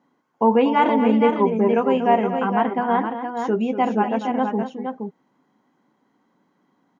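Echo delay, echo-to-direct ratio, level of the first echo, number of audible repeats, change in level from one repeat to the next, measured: 237 ms, −5.0 dB, −11.0 dB, 2, +5.0 dB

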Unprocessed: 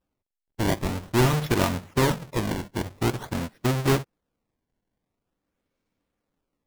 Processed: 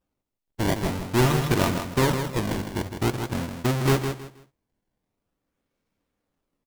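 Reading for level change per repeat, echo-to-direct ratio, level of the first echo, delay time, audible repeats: −12.0 dB, −7.0 dB, −7.5 dB, 159 ms, 3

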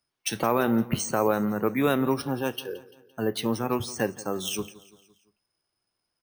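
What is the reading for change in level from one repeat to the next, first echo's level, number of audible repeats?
−6.0 dB, −19.0 dB, 3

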